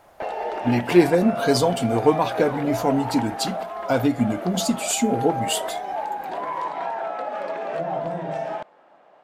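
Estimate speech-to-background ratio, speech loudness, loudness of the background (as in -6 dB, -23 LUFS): 7.0 dB, -22.0 LUFS, -29.0 LUFS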